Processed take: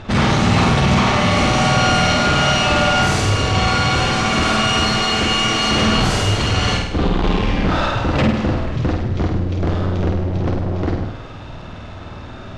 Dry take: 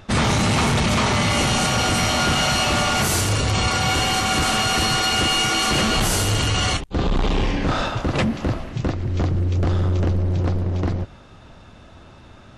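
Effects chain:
power curve on the samples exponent 0.7
high-frequency loss of the air 100 metres
flutter between parallel walls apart 8.7 metres, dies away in 0.75 s

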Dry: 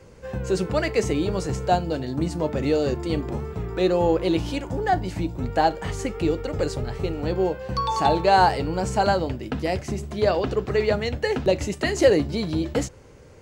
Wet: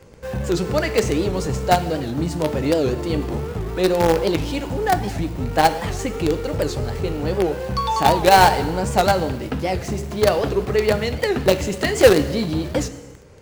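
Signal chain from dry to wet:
in parallel at −12 dB: log-companded quantiser 2 bits
on the sum: reverb whose tail is shaped and stops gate 380 ms falling, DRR 10.5 dB
wow of a warped record 78 rpm, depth 160 cents
level +1 dB

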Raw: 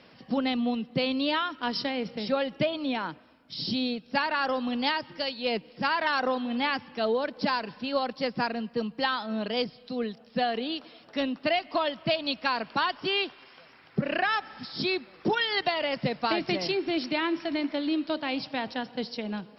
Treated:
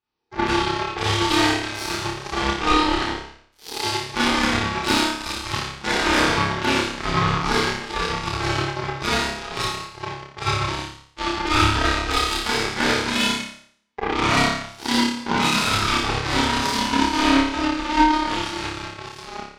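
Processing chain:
ring modulation 610 Hz
four-comb reverb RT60 1.5 s, combs from 26 ms, DRR −8.5 dB
harmonic generator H 3 −40 dB, 7 −17 dB, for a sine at −8 dBFS
on a send: flutter between parallel walls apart 5 metres, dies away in 0.53 s
on the sum: level +1.5 dB

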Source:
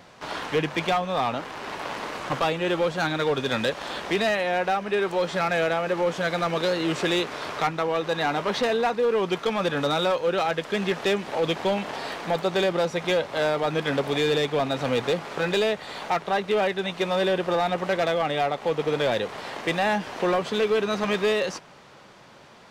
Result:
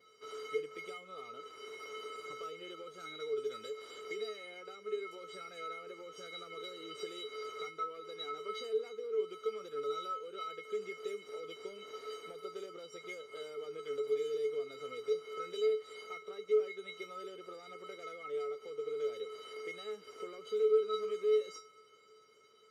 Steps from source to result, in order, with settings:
downward compressor, threshold −26 dBFS, peak gain reduction 7 dB
notch filter 810 Hz, Q 12
tuned comb filter 430 Hz, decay 0.25 s, harmonics odd, mix 100%
level +5.5 dB

